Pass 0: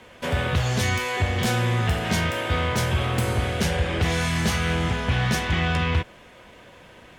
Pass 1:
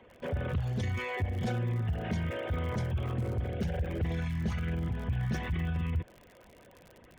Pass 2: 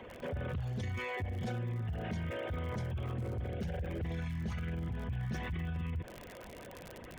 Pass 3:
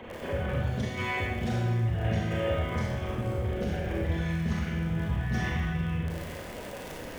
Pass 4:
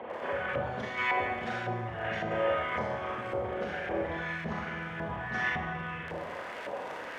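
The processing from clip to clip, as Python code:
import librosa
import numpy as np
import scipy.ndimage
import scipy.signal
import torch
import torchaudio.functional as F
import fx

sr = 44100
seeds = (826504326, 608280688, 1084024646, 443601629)

y1 = fx.envelope_sharpen(x, sr, power=2.0)
y1 = fx.dmg_crackle(y1, sr, seeds[0], per_s=74.0, level_db=-32.0)
y1 = y1 * 10.0 ** (-8.5 / 20.0)
y2 = fx.env_flatten(y1, sr, amount_pct=50)
y2 = y2 * 10.0 ** (-7.5 / 20.0)
y3 = fx.rev_schroeder(y2, sr, rt60_s=1.1, comb_ms=27, drr_db=-4.0)
y3 = y3 * 10.0 ** (4.0 / 20.0)
y4 = fx.filter_lfo_bandpass(y3, sr, shape='saw_up', hz=1.8, low_hz=720.0, high_hz=1700.0, q=1.2)
y4 = y4 * 10.0 ** (7.0 / 20.0)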